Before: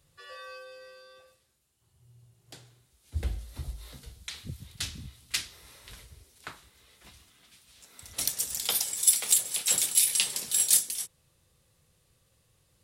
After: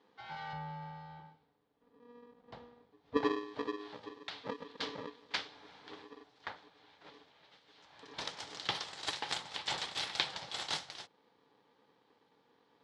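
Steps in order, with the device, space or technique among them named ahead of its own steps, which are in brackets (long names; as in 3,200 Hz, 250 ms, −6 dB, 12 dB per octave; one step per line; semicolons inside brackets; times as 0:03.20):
ring modulator pedal into a guitar cabinet (ring modulator with a square carrier 360 Hz; loudspeaker in its box 110–4,000 Hz, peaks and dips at 230 Hz −7 dB, 840 Hz +7 dB, 2,600 Hz −6 dB)
0:00.53–0:03.17: spectral tilt −3 dB per octave
level −1 dB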